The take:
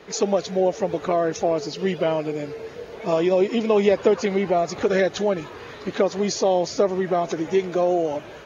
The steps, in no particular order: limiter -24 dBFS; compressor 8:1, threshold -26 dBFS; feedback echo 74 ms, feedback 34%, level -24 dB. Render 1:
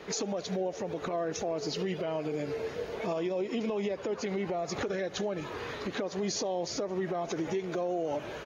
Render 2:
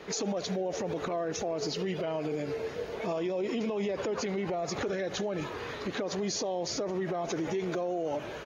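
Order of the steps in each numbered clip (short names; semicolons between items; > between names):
feedback echo > compressor > limiter; feedback echo > limiter > compressor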